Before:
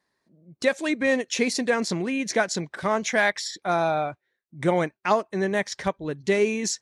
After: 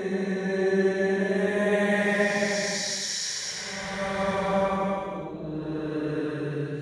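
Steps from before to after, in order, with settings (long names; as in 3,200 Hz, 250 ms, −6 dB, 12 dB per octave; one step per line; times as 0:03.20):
transient designer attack 0 dB, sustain +8 dB
extreme stretch with random phases 8×, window 0.25 s, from 0:05.32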